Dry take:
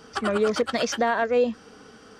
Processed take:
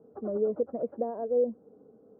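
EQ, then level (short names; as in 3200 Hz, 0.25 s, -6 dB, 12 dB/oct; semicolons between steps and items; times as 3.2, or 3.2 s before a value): HPF 120 Hz 12 dB/oct; ladder low-pass 650 Hz, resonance 40%; air absorption 490 m; 0.0 dB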